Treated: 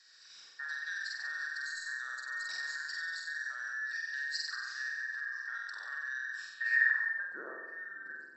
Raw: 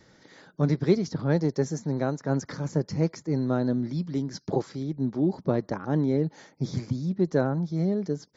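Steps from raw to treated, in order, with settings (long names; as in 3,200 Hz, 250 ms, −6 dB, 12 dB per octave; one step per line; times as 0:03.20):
frequency inversion band by band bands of 2,000 Hz
downward compressor 6 to 1, threshold −30 dBFS, peak gain reduction 14.5 dB
flutter between parallel walls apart 8 metres, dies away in 1.2 s
brickwall limiter −23.5 dBFS, peak gain reduction 6 dB
band-pass filter sweep 4,800 Hz → 360 Hz, 0:06.51–0:07.39
dynamic equaliser 1,400 Hz, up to +5 dB, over −53 dBFS, Q 1.3
level +5 dB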